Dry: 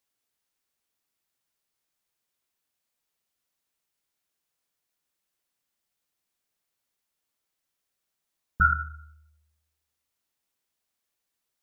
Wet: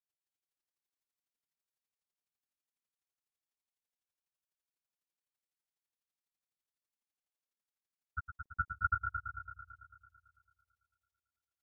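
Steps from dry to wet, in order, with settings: granulator 42 ms, grains 12 per s, spray 583 ms, pitch spread up and down by 0 st; multi-head delay 111 ms, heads first and second, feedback 60%, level -9 dB; trim -8.5 dB

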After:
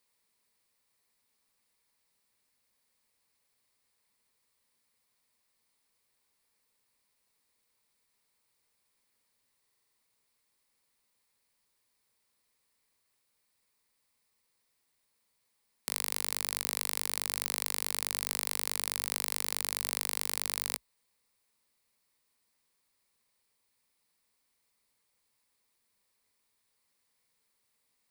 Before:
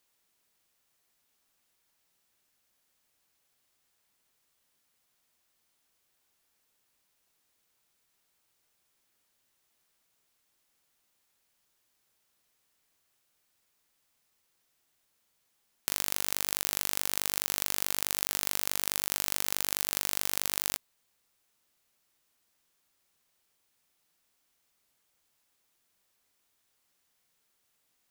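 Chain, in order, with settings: rippled EQ curve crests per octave 0.93, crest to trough 6 dB; buffer glitch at 9.60 s, samples 2048, times 7; trim -3 dB

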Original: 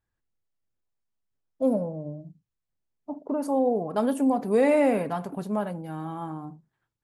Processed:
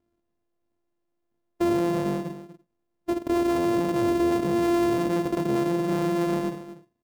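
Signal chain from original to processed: sorted samples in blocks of 128 samples; peaking EQ 310 Hz +14.5 dB 2.8 oct; peak limiter -16.5 dBFS, peak gain reduction 16.5 dB; on a send: delay 242 ms -14 dB

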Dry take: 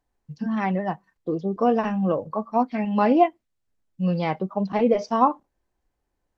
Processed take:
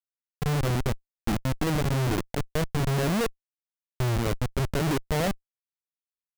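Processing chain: pitch shift -7 st; Schmitt trigger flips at -23 dBFS

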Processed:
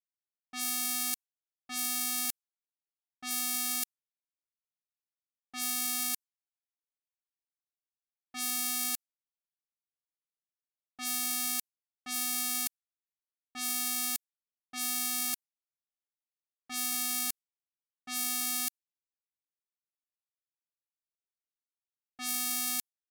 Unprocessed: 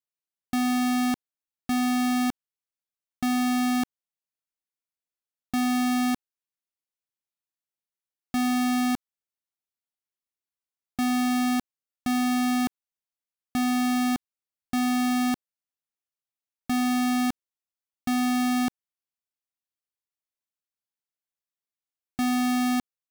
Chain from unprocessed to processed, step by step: formants flattened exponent 0.3; pre-emphasis filter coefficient 0.9; level-controlled noise filter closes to 750 Hz, open at -29.5 dBFS; in parallel at -11 dB: saturation -19 dBFS, distortion -12 dB; on the sum: trim -3 dB

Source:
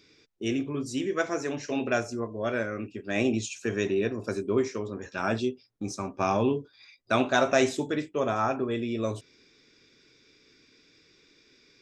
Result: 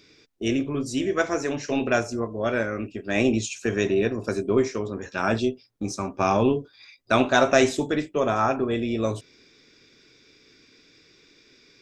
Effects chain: AM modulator 270 Hz, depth 15%; trim +5.5 dB

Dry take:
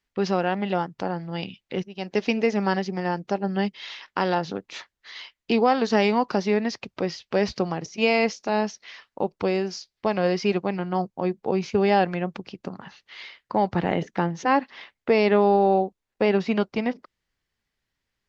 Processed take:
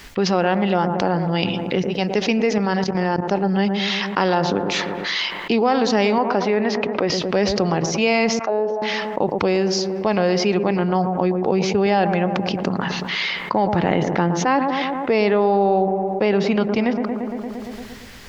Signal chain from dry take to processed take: feedback echo behind a low-pass 115 ms, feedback 54%, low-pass 1.2 kHz, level -12 dB; 2.58–3.31 s: level held to a coarse grid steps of 15 dB; 6.18–7.10 s: tone controls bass -9 dB, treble -14 dB; 8.39–8.82 s: auto-wah 470–1600 Hz, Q 3, down, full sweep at -22 dBFS; level flattener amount 70%

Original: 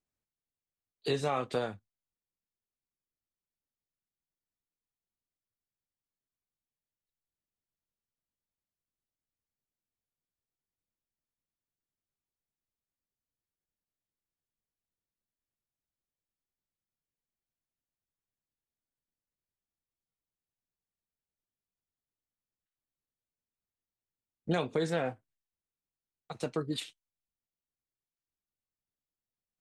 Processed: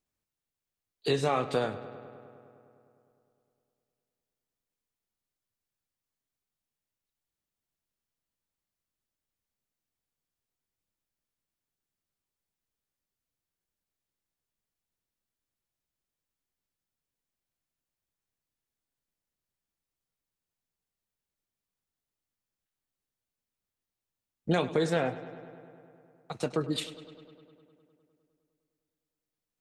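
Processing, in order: filtered feedback delay 102 ms, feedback 78%, low-pass 4.8 kHz, level -15.5 dB; trim +3.5 dB

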